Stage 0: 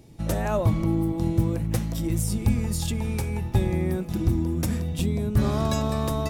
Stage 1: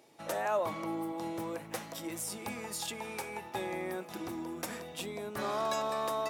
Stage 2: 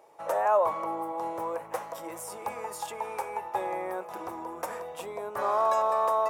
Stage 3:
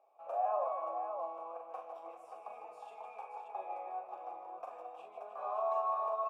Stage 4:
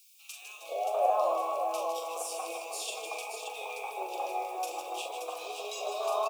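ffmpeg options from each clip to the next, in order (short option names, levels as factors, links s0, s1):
-filter_complex "[0:a]highpass=700,highshelf=f=2200:g=-8.5,asplit=2[s0][s1];[s1]alimiter=level_in=2.11:limit=0.0631:level=0:latency=1:release=24,volume=0.473,volume=0.75[s2];[s0][s2]amix=inputs=2:normalize=0,volume=0.794"
-af "equalizer=f=125:t=o:w=1:g=-3,equalizer=f=250:t=o:w=1:g=-10,equalizer=f=500:t=o:w=1:g=9,equalizer=f=1000:t=o:w=1:g=12,equalizer=f=4000:t=o:w=1:g=-7,volume=0.794"
-filter_complex "[0:a]flanger=delay=7.2:depth=1.7:regen=72:speed=1.7:shape=triangular,asplit=3[s0][s1][s2];[s0]bandpass=f=730:t=q:w=8,volume=1[s3];[s1]bandpass=f=1090:t=q:w=8,volume=0.501[s4];[s2]bandpass=f=2440:t=q:w=8,volume=0.355[s5];[s3][s4][s5]amix=inputs=3:normalize=0,asplit=2[s6][s7];[s7]aecho=0:1:42|154|313|577:0.531|0.422|0.282|0.501[s8];[s6][s8]amix=inputs=2:normalize=0"
-filter_complex "[0:a]aexciter=amount=13.2:drive=8.6:freq=2700,highpass=f=400:t=q:w=3.7,acrossover=split=610|2100[s0][s1][s2];[s0]adelay=420[s3];[s1]adelay=650[s4];[s3][s4][s2]amix=inputs=3:normalize=0,volume=2.11"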